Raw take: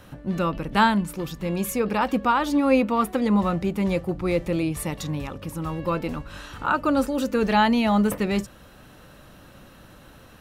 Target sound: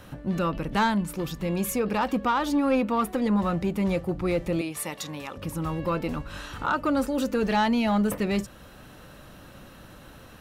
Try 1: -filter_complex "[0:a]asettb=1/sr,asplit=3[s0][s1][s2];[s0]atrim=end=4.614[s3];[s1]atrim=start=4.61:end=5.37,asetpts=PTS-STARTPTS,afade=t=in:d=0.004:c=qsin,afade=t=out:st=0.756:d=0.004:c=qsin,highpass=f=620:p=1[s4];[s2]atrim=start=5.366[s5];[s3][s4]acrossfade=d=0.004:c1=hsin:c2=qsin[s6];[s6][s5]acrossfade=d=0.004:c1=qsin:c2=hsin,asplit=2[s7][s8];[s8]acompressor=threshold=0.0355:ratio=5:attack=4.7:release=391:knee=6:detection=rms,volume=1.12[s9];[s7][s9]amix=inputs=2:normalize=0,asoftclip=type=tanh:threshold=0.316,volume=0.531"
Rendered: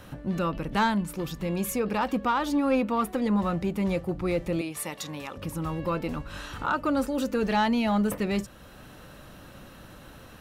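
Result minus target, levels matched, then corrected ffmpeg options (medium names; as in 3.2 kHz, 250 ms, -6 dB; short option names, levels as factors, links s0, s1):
compression: peak gain reduction +5.5 dB
-filter_complex "[0:a]asettb=1/sr,asplit=3[s0][s1][s2];[s0]atrim=end=4.614[s3];[s1]atrim=start=4.61:end=5.37,asetpts=PTS-STARTPTS,afade=t=in:d=0.004:c=qsin,afade=t=out:st=0.756:d=0.004:c=qsin,highpass=f=620:p=1[s4];[s2]atrim=start=5.366[s5];[s3][s4]acrossfade=d=0.004:c1=hsin:c2=qsin[s6];[s6][s5]acrossfade=d=0.004:c1=qsin:c2=hsin,asplit=2[s7][s8];[s8]acompressor=threshold=0.0794:ratio=5:attack=4.7:release=391:knee=6:detection=rms,volume=1.12[s9];[s7][s9]amix=inputs=2:normalize=0,asoftclip=type=tanh:threshold=0.316,volume=0.531"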